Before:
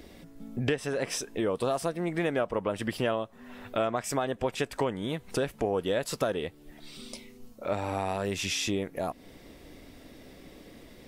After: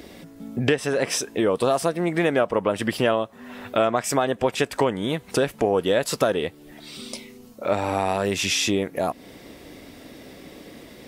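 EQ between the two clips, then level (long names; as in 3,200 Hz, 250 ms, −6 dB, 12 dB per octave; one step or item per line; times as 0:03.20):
high-pass filter 120 Hz 6 dB per octave
+8.0 dB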